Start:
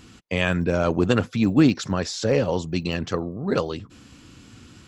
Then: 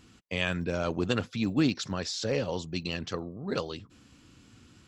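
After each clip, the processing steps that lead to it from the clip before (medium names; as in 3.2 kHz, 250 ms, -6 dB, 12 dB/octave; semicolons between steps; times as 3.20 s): dynamic bell 4.1 kHz, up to +7 dB, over -45 dBFS, Q 0.78; trim -9 dB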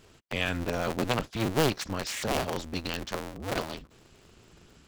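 cycle switcher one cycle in 2, inverted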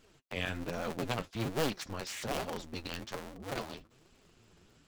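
flange 1.2 Hz, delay 3.4 ms, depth 8.3 ms, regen +35%; trim -3 dB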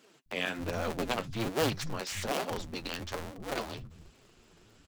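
bands offset in time highs, lows 260 ms, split 160 Hz; trim +3.5 dB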